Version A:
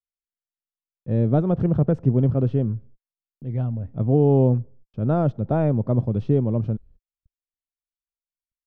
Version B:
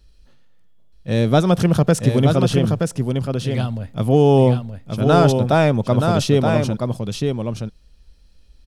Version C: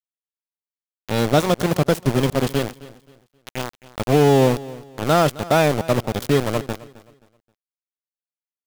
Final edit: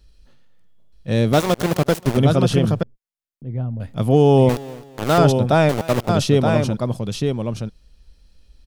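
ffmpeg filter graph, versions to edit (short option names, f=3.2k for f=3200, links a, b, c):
-filter_complex "[2:a]asplit=3[a][b][c];[1:a]asplit=5[d][e][f][g][h];[d]atrim=end=1.332[i];[a]atrim=start=1.328:end=2.172[j];[e]atrim=start=2.168:end=2.832[k];[0:a]atrim=start=2.828:end=3.802[l];[f]atrim=start=3.798:end=4.492[m];[b]atrim=start=4.488:end=5.182[n];[g]atrim=start=5.178:end=5.692[o];[c]atrim=start=5.688:end=6.092[p];[h]atrim=start=6.088[q];[i][j]acrossfade=d=0.004:c1=hsin:c2=hsin[r];[r][k]acrossfade=d=0.004:c1=hsin:c2=hsin[s];[s][l]acrossfade=d=0.004:c1=hsin:c2=hsin[t];[t][m]acrossfade=d=0.004:c1=hsin:c2=hsin[u];[u][n]acrossfade=d=0.004:c1=hsin:c2=hsin[v];[v][o]acrossfade=d=0.004:c1=hsin:c2=hsin[w];[w][p]acrossfade=d=0.004:c1=hsin:c2=hsin[x];[x][q]acrossfade=d=0.004:c1=hsin:c2=hsin"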